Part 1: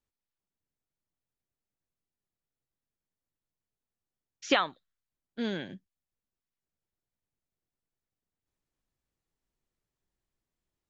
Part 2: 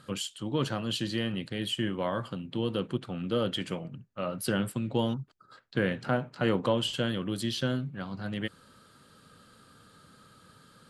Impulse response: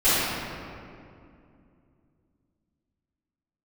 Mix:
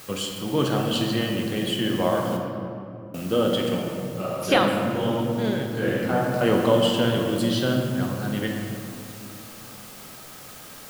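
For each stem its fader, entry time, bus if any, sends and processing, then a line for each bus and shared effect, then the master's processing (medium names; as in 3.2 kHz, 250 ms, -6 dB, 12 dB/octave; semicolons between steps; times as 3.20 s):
+2.0 dB, 0.00 s, send -22 dB, none
+2.0 dB, 0.00 s, muted 2.37–3.14 s, send -19 dB, word length cut 8-bit, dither triangular; auto duck -12 dB, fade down 0.85 s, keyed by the first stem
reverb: on, RT60 2.5 s, pre-delay 3 ms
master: peaking EQ 640 Hz +5 dB 1.2 oct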